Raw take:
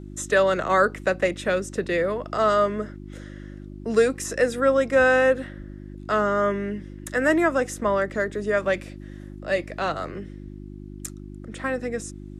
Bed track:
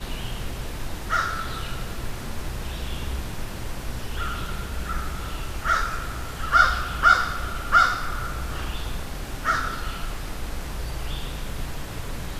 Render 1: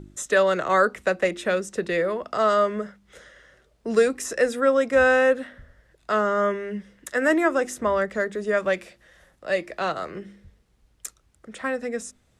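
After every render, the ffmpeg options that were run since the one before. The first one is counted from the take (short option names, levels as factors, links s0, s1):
-af "bandreject=f=50:t=h:w=4,bandreject=f=100:t=h:w=4,bandreject=f=150:t=h:w=4,bandreject=f=200:t=h:w=4,bandreject=f=250:t=h:w=4,bandreject=f=300:t=h:w=4,bandreject=f=350:t=h:w=4"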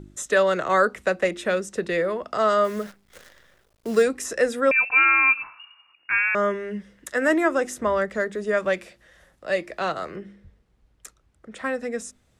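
-filter_complex "[0:a]asplit=3[s0][s1][s2];[s0]afade=t=out:st=2.63:d=0.02[s3];[s1]acrusher=bits=8:dc=4:mix=0:aa=0.000001,afade=t=in:st=2.63:d=0.02,afade=t=out:st=4.02:d=0.02[s4];[s2]afade=t=in:st=4.02:d=0.02[s5];[s3][s4][s5]amix=inputs=3:normalize=0,asettb=1/sr,asplit=3[s6][s7][s8];[s6]atrim=end=4.714[s9];[s7]atrim=start=4.71:end=6.35,asetpts=PTS-STARTPTS,afade=t=in:d=0.004:c=qsin,afade=t=out:st=1.636:d=0.004:c=qsin,lowpass=f=2500:t=q:w=0.5098,lowpass=f=2500:t=q:w=0.6013,lowpass=f=2500:t=q:w=0.9,lowpass=f=2500:t=q:w=2.563,afreqshift=-2900[s10];[s8]atrim=start=6.346[s11];[s9][s10]acrossfade=d=0.004:c1=hsin:c2=qsin[s12];[s12][s11]acrossfade=d=0.004:c1=qsin:c2=hsin,asettb=1/sr,asplit=3[s13][s14][s15];[s13]atrim=end=10.164[s16];[s14]atrim=start=10.16:end=11.56,asetpts=PTS-STARTPTS,afade=t=in:d=0.004:c=qsin,afade=t=out:st=1.396:d=0.004:c=qsin,highshelf=f=3800:g=-9.5[s17];[s15]atrim=start=11.556[s18];[s16][s17]acrossfade=d=0.004:c1=hsin:c2=qsin[s19];[s19][s18]acrossfade=d=0.004:c1=qsin:c2=hsin"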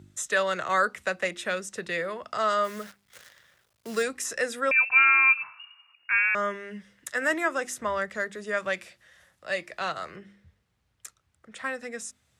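-af "highpass=f=80:w=0.5412,highpass=f=80:w=1.3066,equalizer=f=330:w=0.5:g=-11"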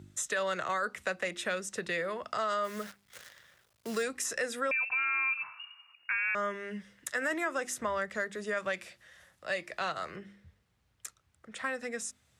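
-af "alimiter=limit=0.119:level=0:latency=1:release=12,acompressor=threshold=0.0251:ratio=2"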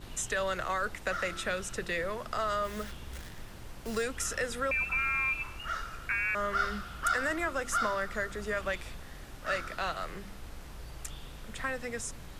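-filter_complex "[1:a]volume=0.2[s0];[0:a][s0]amix=inputs=2:normalize=0"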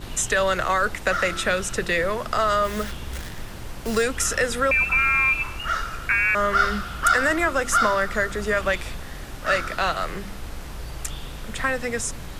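-af "volume=3.35"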